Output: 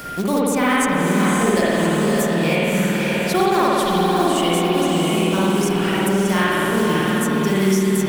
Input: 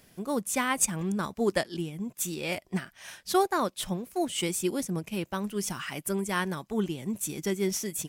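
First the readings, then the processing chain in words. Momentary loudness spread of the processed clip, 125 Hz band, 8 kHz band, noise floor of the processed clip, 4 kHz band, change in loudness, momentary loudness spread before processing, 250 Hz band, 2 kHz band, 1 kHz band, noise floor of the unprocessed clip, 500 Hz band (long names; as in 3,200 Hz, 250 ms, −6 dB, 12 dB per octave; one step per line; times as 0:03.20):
2 LU, +14.0 dB, +4.5 dB, −21 dBFS, +12.0 dB, +12.0 dB, 8 LU, +14.0 dB, +13.5 dB, +13.0 dB, −63 dBFS, +13.0 dB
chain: in parallel at −2 dB: output level in coarse steps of 17 dB
on the sum: steady tone 1,400 Hz −55 dBFS
floating-point word with a short mantissa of 2 bits
on a send: feedback delay with all-pass diffusion 585 ms, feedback 44%, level −4 dB
on the sum: spring reverb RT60 2 s, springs 52 ms, chirp 35 ms, DRR −7.5 dB
multiband upward and downward compressor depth 70%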